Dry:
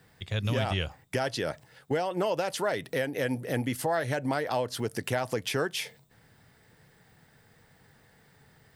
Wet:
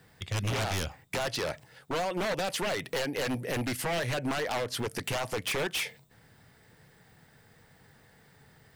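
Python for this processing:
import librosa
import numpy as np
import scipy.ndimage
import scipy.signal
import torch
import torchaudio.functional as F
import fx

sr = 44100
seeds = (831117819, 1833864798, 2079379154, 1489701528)

y = fx.dynamic_eq(x, sr, hz=2400.0, q=1.7, threshold_db=-49.0, ratio=4.0, max_db=6)
y = 10.0 ** (-26.0 / 20.0) * (np.abs((y / 10.0 ** (-26.0 / 20.0) + 3.0) % 4.0 - 2.0) - 1.0)
y = F.gain(torch.from_numpy(y), 1.0).numpy()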